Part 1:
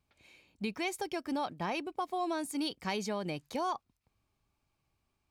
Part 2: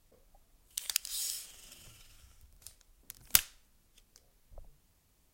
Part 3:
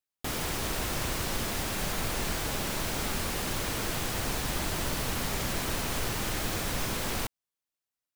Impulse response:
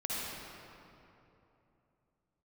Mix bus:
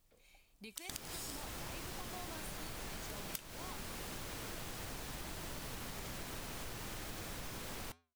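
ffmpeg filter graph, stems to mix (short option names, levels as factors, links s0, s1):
-filter_complex "[0:a]aemphasis=mode=production:type=bsi,alimiter=level_in=1.68:limit=0.0631:level=0:latency=1:release=387,volume=0.596,volume=0.531[s0];[1:a]volume=0.944[s1];[2:a]adelay=650,volume=0.531[s2];[s0][s1][s2]amix=inputs=3:normalize=0,asoftclip=type=tanh:threshold=0.501,flanger=delay=5.8:depth=1.7:regen=-88:speed=1.5:shape=triangular,acompressor=threshold=0.00891:ratio=6"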